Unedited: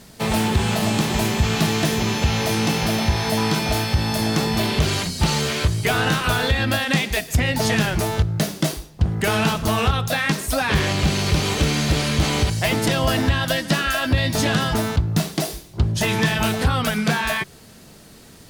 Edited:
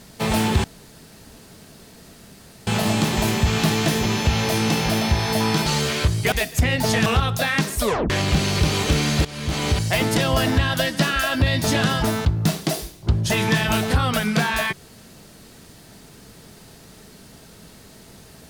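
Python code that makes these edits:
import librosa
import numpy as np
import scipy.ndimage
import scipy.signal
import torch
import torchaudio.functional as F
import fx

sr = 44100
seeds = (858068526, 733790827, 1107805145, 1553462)

y = fx.edit(x, sr, fx.insert_room_tone(at_s=0.64, length_s=2.03),
    fx.cut(start_s=3.63, length_s=1.63),
    fx.cut(start_s=5.92, length_s=1.16),
    fx.cut(start_s=7.82, length_s=1.95),
    fx.tape_stop(start_s=10.52, length_s=0.29),
    fx.fade_in_from(start_s=11.96, length_s=0.53, floor_db=-18.5), tone=tone)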